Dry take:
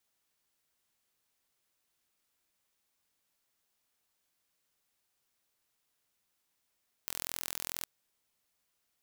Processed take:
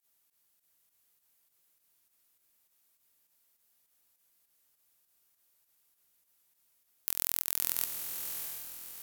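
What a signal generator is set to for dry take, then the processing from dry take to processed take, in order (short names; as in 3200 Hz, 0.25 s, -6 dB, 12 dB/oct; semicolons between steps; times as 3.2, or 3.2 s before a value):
pulse train 42.3/s, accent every 0, -9.5 dBFS 0.76 s
pump 101 bpm, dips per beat 2, -16 dB, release 80 ms; bell 14000 Hz +12 dB 1 oct; diffused feedback echo 0.684 s, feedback 42%, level -5.5 dB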